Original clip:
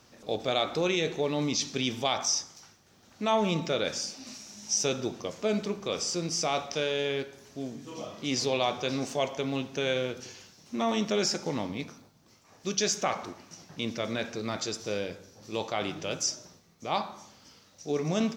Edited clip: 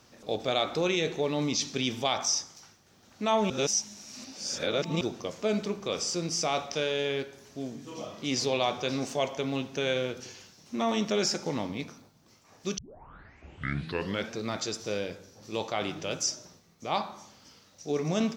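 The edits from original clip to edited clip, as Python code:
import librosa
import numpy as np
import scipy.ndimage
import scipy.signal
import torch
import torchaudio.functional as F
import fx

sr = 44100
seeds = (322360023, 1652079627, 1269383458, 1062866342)

y = fx.edit(x, sr, fx.reverse_span(start_s=3.5, length_s=1.51),
    fx.tape_start(start_s=12.78, length_s=1.56), tone=tone)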